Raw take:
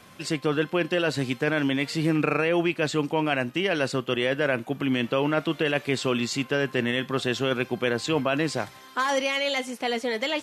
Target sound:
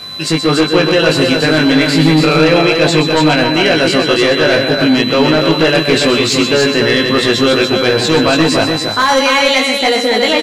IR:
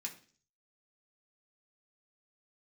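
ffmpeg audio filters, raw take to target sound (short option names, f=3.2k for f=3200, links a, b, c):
-filter_complex "[0:a]aeval=exprs='val(0)+0.00794*sin(2*PI*4000*n/s)':c=same,asplit=2[a][b];[b]adelay=19,volume=-3.5dB[c];[a][c]amix=inputs=2:normalize=0,asplit=2[d][e];[e]aecho=0:1:126:0.335[f];[d][f]amix=inputs=2:normalize=0,aeval=exprs='0.473*(cos(1*acos(clip(val(0)/0.473,-1,1)))-cos(1*PI/2))+0.15*(cos(5*acos(clip(val(0)/0.473,-1,1)))-cos(5*PI/2))':c=same,asplit=2[g][h];[h]aecho=0:1:287:0.596[i];[g][i]amix=inputs=2:normalize=0,volume=4.5dB"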